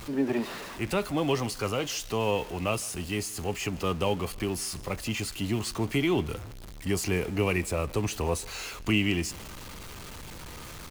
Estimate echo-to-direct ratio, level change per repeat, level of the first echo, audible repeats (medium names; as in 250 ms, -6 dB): -23.0 dB, -8.0 dB, -23.5 dB, 2